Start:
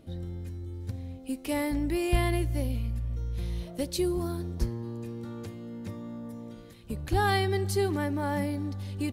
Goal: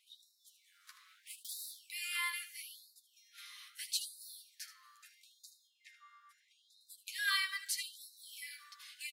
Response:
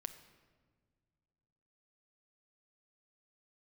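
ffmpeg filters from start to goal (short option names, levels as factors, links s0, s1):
-filter_complex "[0:a]asettb=1/sr,asplit=3[s0][s1][s2];[s0]atrim=end=0.494[s3];[s1]atrim=start=0.49:end=1.79,asetpts=PTS-STARTPTS,afade=t=in:d=0.004:c=qsin,afade=t=out:st=1.296:d=0.004:c=qsin,aeval=exprs='abs(val(0))':c=same[s4];[s2]atrim=start=1.786[s5];[s3][s4]acrossfade=d=0.004:c1=hsin:c2=qsin[s6];[s6][s5]acrossfade=d=0.004:c1=qsin:c2=hsin,asettb=1/sr,asplit=3[s7][s8][s9];[s7]atrim=end=5.674[s10];[s8]atrim=start=5.67:end=6.81,asetpts=PTS-STARTPTS,afade=t=in:d=0.004:c=qsin,afade=t=out:st=1.136:d=0.004:c=qsin,aemphasis=mode=reproduction:type=50fm[s11];[s9]atrim=start=6.806[s12];[s10][s11]acrossfade=d=0.004:c1=hsin:c2=qsin[s13];[s13][s12]acrossfade=d=0.004:c1=qsin:c2=hsin,aecho=1:1:10|78:0.531|0.282,afftfilt=real='re*gte(b*sr/1024,990*pow(3700/990,0.5+0.5*sin(2*PI*0.77*pts/sr)))':imag='im*gte(b*sr/1024,990*pow(3700/990,0.5+0.5*sin(2*PI*0.77*pts/sr)))':win_size=1024:overlap=0.75,volume=0.841"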